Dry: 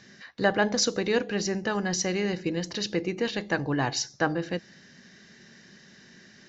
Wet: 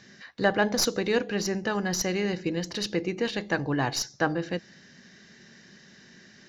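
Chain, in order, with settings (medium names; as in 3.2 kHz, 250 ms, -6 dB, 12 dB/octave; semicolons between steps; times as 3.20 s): tracing distortion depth 0.025 ms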